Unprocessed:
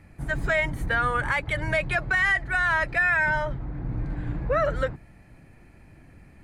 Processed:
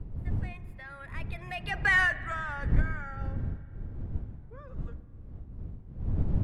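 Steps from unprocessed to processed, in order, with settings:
source passing by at 0:01.94, 43 m/s, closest 4.5 metres
wind on the microphone 91 Hz −33 dBFS
spring reverb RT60 2.7 s, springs 40 ms, chirp 70 ms, DRR 15.5 dB

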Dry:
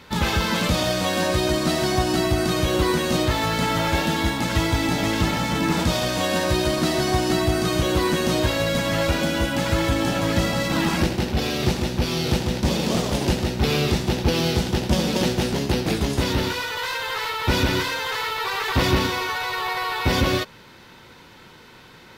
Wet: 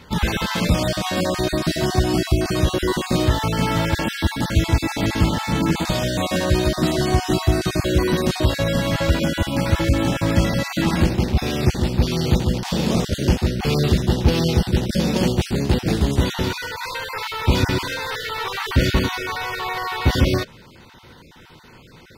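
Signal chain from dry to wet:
time-frequency cells dropped at random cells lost 22%
low-shelf EQ 220 Hz +7 dB

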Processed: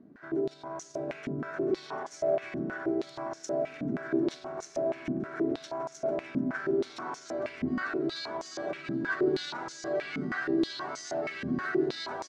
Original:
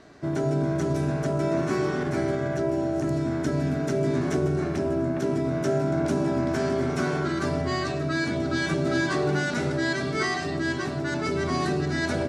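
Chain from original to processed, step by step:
brickwall limiter −21 dBFS, peak gain reduction 7 dB
on a send: repeating echo 745 ms, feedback 54%, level −4 dB
on the sum: band-pass on a step sequencer 6.3 Hz 230–6,300 Hz
level +5.5 dB

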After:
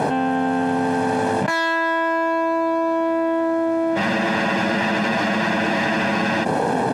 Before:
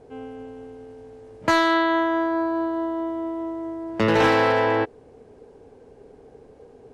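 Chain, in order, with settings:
gain on one half-wave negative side −7 dB
high-pass filter 150 Hz 24 dB per octave
parametric band 1,600 Hz +3.5 dB 0.72 octaves
comb filter 1.2 ms, depth 70%
frozen spectrum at 0:03.99, 2.44 s
envelope flattener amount 100%
level −3.5 dB

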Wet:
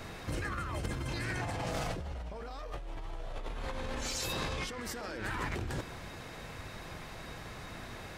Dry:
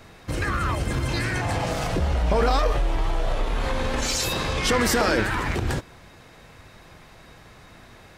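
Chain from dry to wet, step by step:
compressor whose output falls as the input rises −32 dBFS, ratio −1
level −5.5 dB

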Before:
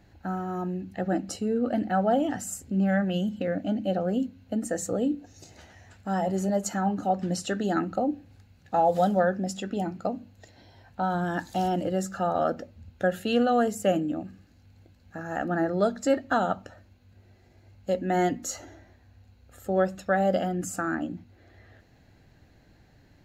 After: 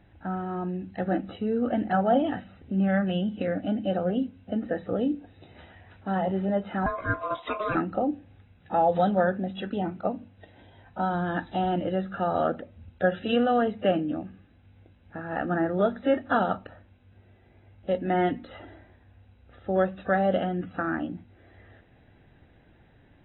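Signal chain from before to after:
0:06.86–0:07.75: ring modulation 850 Hz
AAC 16 kbit/s 24,000 Hz

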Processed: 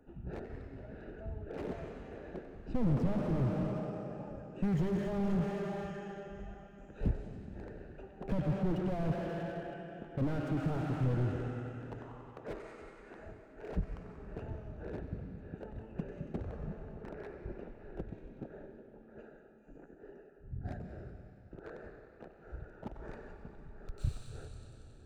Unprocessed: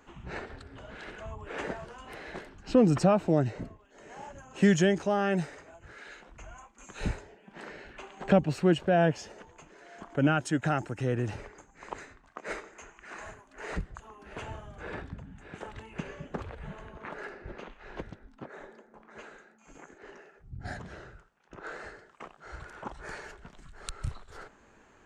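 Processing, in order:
adaptive Wiener filter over 41 samples
in parallel at −0.5 dB: brickwall limiter −18.5 dBFS, peak gain reduction 8.5 dB
on the sum: feedback echo with a high-pass in the loop 93 ms, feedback 75%, high-pass 320 Hz, level −17 dB
comb and all-pass reverb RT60 3.3 s, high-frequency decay 0.95×, pre-delay 90 ms, DRR 8.5 dB
slew-rate limiting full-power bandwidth 15 Hz
level −5 dB

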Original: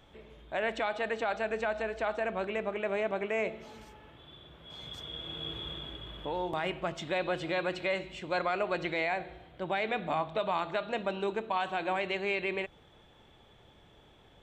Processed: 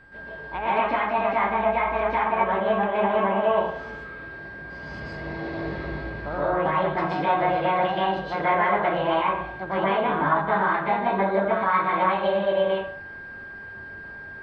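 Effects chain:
low-pass filter 2,500 Hz 12 dB per octave
treble cut that deepens with the level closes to 1,600 Hz, closed at −29.5 dBFS
formants moved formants +6 semitones
tilt shelving filter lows +4 dB, about 1,500 Hz
steady tone 1,600 Hz −50 dBFS
convolution reverb RT60 0.55 s, pre-delay 116 ms, DRR −8.5 dB
MP2 64 kbit/s 32,000 Hz

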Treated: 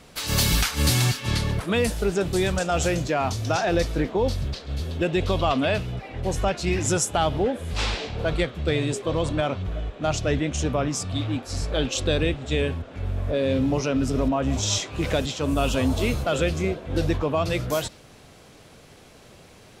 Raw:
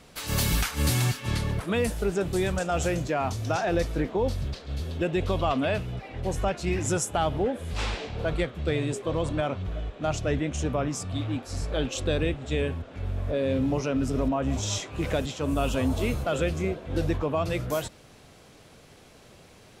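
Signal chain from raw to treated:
dynamic equaliser 4,500 Hz, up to +5 dB, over −47 dBFS, Q 0.99
level +3 dB

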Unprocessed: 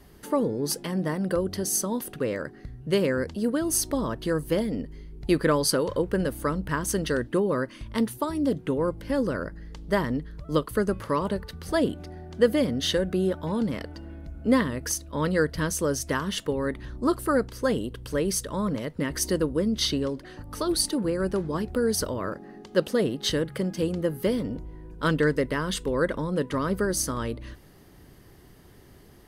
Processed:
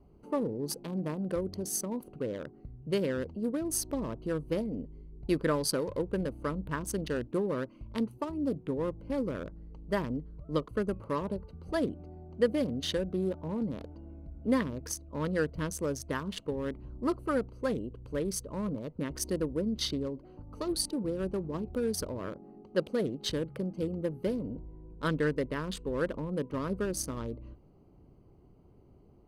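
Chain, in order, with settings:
adaptive Wiener filter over 25 samples
level −6 dB

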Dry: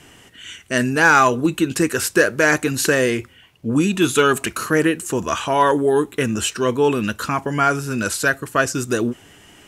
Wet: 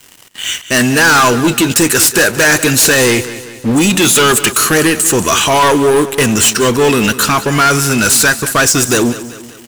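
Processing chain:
high-shelf EQ 2,400 Hz +12 dB
leveller curve on the samples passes 5
on a send: repeating echo 192 ms, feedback 49%, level −14.5 dB
on the sum: level −7.5 dB

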